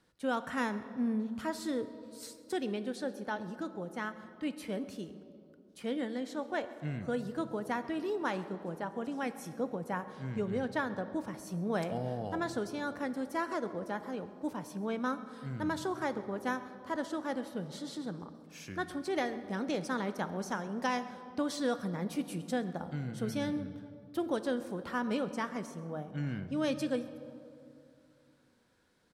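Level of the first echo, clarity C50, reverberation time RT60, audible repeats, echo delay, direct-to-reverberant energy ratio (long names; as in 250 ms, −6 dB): −21.5 dB, 12.0 dB, 2.7 s, 1, 134 ms, 10.5 dB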